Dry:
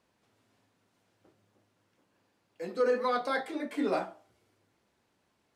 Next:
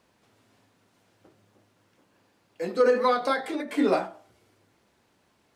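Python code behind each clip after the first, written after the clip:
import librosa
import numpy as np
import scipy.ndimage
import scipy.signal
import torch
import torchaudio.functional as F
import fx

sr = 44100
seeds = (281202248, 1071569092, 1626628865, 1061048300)

y = fx.end_taper(x, sr, db_per_s=140.0)
y = y * librosa.db_to_amplitude(7.5)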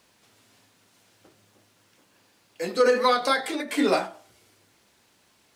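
y = fx.high_shelf(x, sr, hz=2100.0, db=11.0)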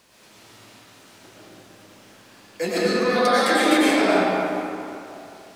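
y = fx.over_compress(x, sr, threshold_db=-27.0, ratio=-1.0)
y = fx.rev_freeverb(y, sr, rt60_s=2.8, hf_ratio=0.6, predelay_ms=70, drr_db=-8.5)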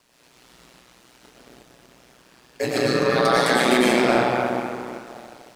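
y = fx.leveller(x, sr, passes=1)
y = y * np.sin(2.0 * np.pi * 61.0 * np.arange(len(y)) / sr)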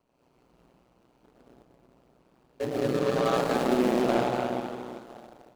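y = scipy.ndimage.median_filter(x, 25, mode='constant')
y = y * librosa.db_to_amplitude(-5.0)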